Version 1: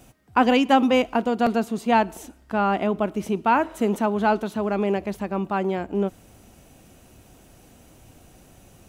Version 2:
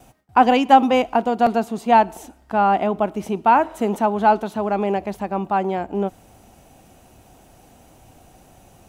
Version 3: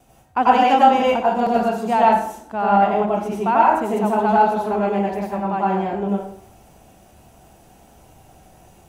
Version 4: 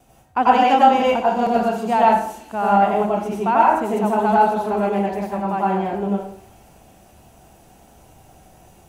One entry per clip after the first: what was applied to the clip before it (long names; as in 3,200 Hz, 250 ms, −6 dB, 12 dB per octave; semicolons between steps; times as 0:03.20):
noise gate with hold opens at −48 dBFS; parametric band 790 Hz +8 dB 0.67 octaves
dense smooth reverb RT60 0.6 s, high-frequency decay 0.75×, pre-delay 80 ms, DRR −5.5 dB; level −6 dB
delay with a high-pass on its return 358 ms, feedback 67%, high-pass 5,100 Hz, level −9 dB